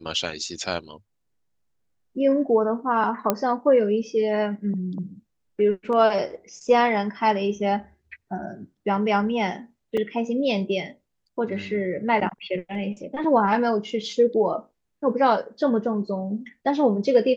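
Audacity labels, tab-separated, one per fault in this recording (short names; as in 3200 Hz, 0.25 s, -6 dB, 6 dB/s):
3.300000	3.300000	pop -6 dBFS
9.970000	9.970000	gap 4.5 ms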